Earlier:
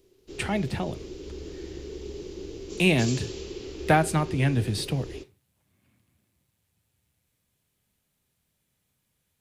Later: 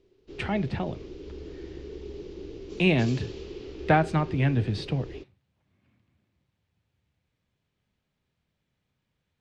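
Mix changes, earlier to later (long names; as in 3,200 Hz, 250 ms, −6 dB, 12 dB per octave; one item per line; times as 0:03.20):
background: send off
master: add high-frequency loss of the air 170 metres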